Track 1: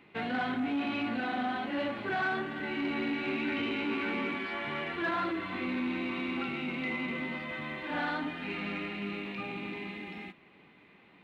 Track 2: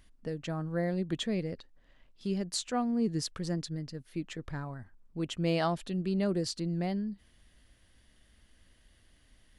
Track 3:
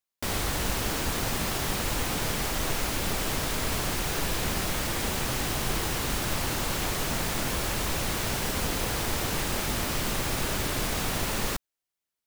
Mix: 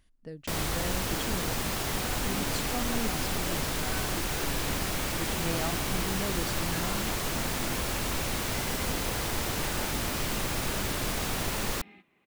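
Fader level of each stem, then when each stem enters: -10.5 dB, -5.5 dB, -2.0 dB; 1.70 s, 0.00 s, 0.25 s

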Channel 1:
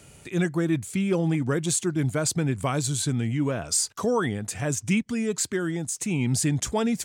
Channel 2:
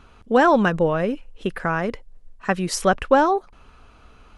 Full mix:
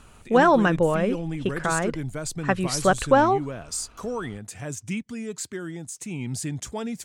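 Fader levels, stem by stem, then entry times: -6.5 dB, -1.5 dB; 0.00 s, 0.00 s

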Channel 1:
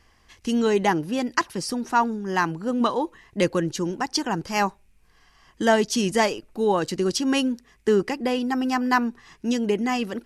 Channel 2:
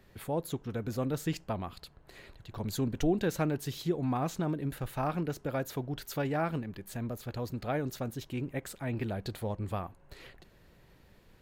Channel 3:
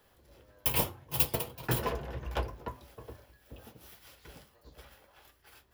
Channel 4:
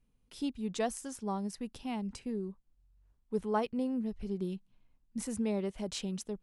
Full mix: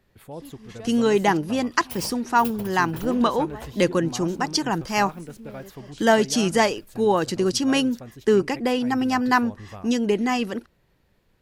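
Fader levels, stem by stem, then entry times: +1.5 dB, -5.0 dB, -8.0 dB, -10.0 dB; 0.40 s, 0.00 s, 1.25 s, 0.00 s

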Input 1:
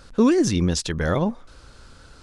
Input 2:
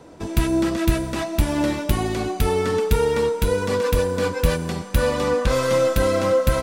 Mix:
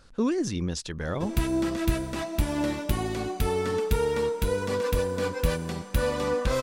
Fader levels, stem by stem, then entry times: -8.5 dB, -6.0 dB; 0.00 s, 1.00 s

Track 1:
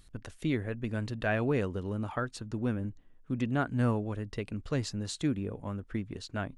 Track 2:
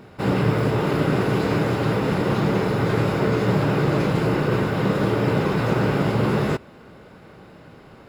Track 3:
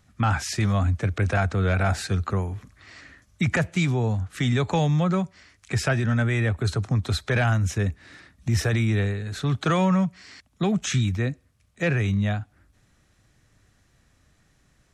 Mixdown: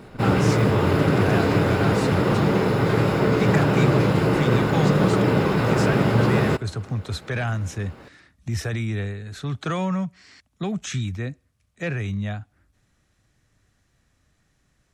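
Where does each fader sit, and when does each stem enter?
-0.5 dB, +1.0 dB, -4.0 dB; 0.00 s, 0.00 s, 0.00 s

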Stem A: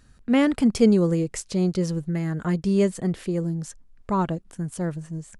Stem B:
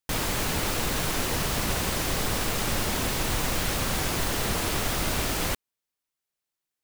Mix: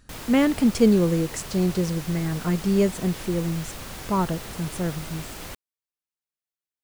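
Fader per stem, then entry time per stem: 0.0 dB, -10.0 dB; 0.00 s, 0.00 s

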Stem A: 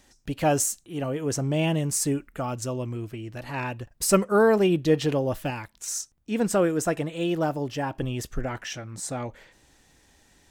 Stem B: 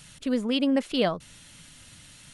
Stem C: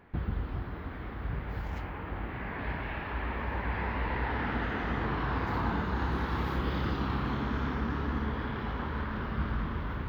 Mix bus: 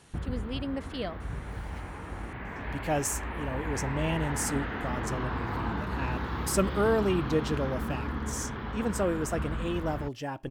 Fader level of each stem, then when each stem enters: -6.5 dB, -11.0 dB, -1.5 dB; 2.45 s, 0.00 s, 0.00 s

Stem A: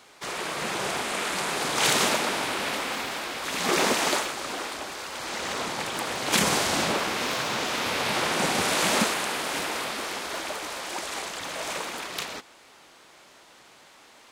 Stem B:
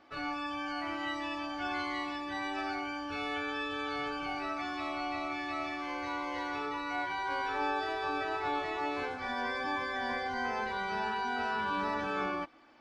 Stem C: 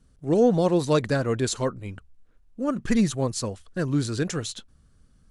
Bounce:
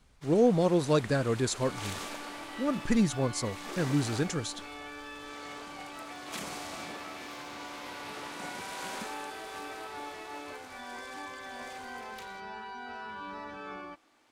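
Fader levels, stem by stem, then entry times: -17.5 dB, -8.5 dB, -4.0 dB; 0.00 s, 1.50 s, 0.00 s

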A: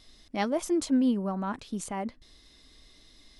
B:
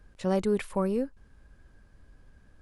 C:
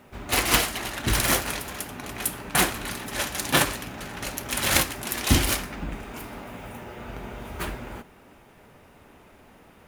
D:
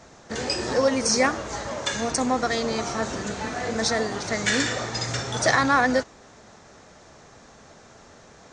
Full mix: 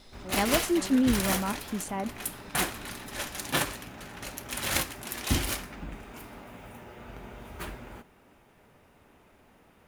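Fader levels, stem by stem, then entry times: +0.5 dB, -15.0 dB, -7.0 dB, mute; 0.00 s, 0.00 s, 0.00 s, mute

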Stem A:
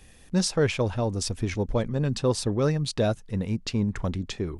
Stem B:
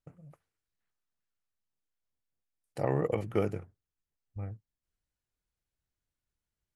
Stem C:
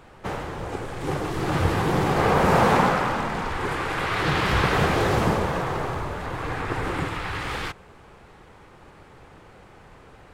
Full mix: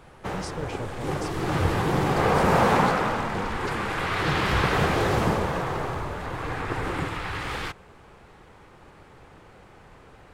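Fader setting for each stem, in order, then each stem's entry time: -12.5 dB, -7.5 dB, -1.5 dB; 0.00 s, 0.00 s, 0.00 s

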